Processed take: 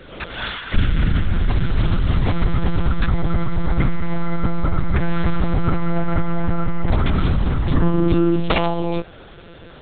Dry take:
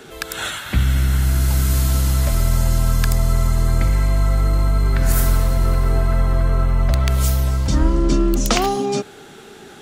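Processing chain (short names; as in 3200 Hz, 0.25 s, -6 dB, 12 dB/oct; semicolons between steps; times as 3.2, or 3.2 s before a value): monotone LPC vocoder at 8 kHz 170 Hz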